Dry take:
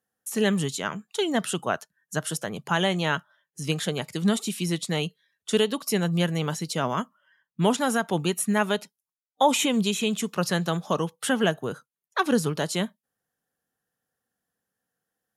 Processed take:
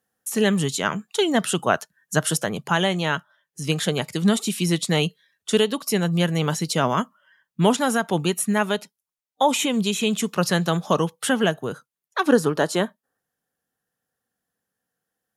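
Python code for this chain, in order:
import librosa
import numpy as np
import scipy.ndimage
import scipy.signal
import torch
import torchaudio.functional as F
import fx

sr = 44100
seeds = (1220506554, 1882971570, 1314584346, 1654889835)

y = fx.spec_box(x, sr, start_s=12.28, length_s=0.91, low_hz=250.0, high_hz=1900.0, gain_db=7)
y = fx.rider(y, sr, range_db=4, speed_s=0.5)
y = F.gain(torch.from_numpy(y), 3.5).numpy()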